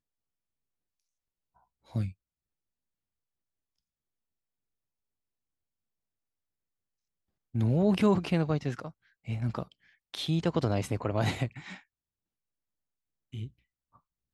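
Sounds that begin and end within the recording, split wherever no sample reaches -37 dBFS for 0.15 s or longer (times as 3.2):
1.95–2.1
7.55–8.89
9.28–9.63
10.14–11.76
13.34–13.46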